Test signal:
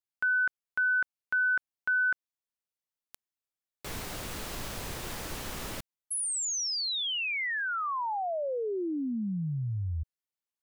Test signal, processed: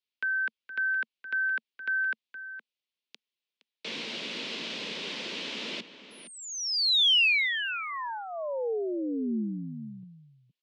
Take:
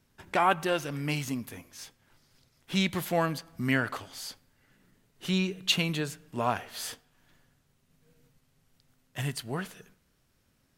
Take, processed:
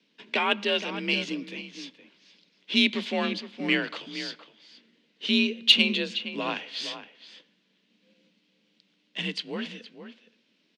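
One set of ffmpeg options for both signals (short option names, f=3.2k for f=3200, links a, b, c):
-filter_complex "[0:a]highpass=f=150:w=0.5412,highpass=f=150:w=1.3066,equalizer=f=180:t=q:w=4:g=4,equalizer=f=410:t=q:w=4:g=3,equalizer=f=720:t=q:w=4:g=-8,equalizer=f=1.2k:t=q:w=4:g=-6,lowpass=f=3.7k:w=0.5412,lowpass=f=3.7k:w=1.3066,asplit=2[a][b];[b]adelay=466.5,volume=-11dB,highshelf=f=4k:g=-10.5[c];[a][c]amix=inputs=2:normalize=0,afreqshift=44,acrossover=split=700|1300[d][e][f];[f]aexciter=amount=3.5:drive=6.9:freq=2.3k[g];[d][e][g]amix=inputs=3:normalize=0"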